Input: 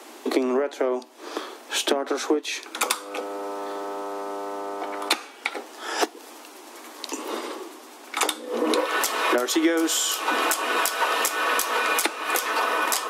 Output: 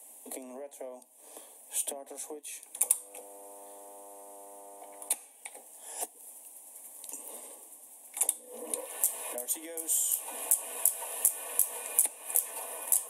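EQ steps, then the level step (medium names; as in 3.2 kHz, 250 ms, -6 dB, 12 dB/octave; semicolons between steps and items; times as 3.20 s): high-pass 280 Hz; resonant high shelf 6.9 kHz +13.5 dB, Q 3; static phaser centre 360 Hz, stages 6; -15.0 dB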